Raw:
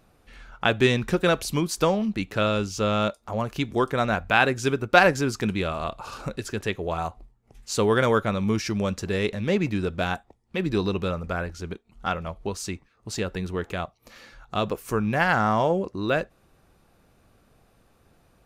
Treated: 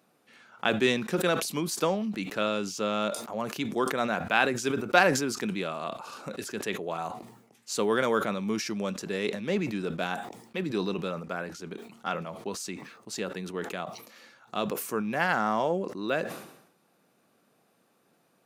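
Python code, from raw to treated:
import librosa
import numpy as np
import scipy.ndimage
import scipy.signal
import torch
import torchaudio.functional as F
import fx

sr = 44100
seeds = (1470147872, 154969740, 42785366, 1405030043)

y = scipy.signal.sosfilt(scipy.signal.butter(4, 170.0, 'highpass', fs=sr, output='sos'), x)
y = fx.high_shelf(y, sr, hz=7400.0, db=4.0)
y = fx.sustainer(y, sr, db_per_s=72.0)
y = y * librosa.db_to_amplitude(-5.0)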